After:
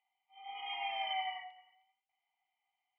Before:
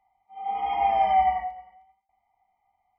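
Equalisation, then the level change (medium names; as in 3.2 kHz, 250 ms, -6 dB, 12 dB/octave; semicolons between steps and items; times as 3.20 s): band-pass filter 2.9 kHz, Q 5.8; distance through air 78 m; +8.5 dB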